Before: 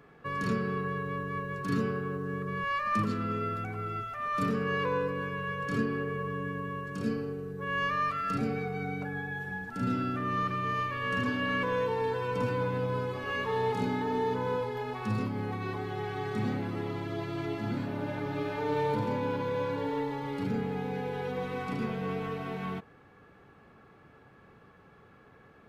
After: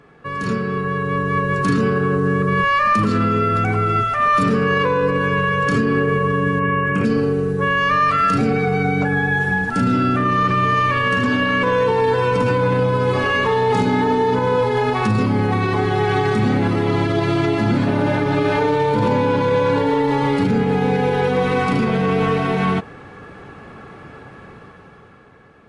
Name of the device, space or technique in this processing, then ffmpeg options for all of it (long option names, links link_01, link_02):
low-bitrate web radio: -filter_complex "[0:a]asettb=1/sr,asplit=3[link_01][link_02][link_03];[link_01]atrim=end=6.594[link_04];[link_02]atrim=start=6.59:end=7.05,asetpts=PTS-STARTPTS,afade=type=in:duration=0.004:curve=qsin,afade=type=out:start_time=0.456:duration=0.004:curve=qsin,highshelf=frequency=3200:width_type=q:width=3:gain=-10[link_05];[link_03]atrim=start=7.046[link_06];[link_04][link_05]acrossfade=duration=0.004:curve1=hsin:curve2=qsin[link_07];[link_07][link_06]acrossfade=duration=0.004:curve1=qsin:curve2=hsin,dynaudnorm=framelen=220:gausssize=11:maxgain=11dB,alimiter=limit=-17dB:level=0:latency=1:release=48,volume=8dB" -ar 32000 -c:a libmp3lame -b:a 48k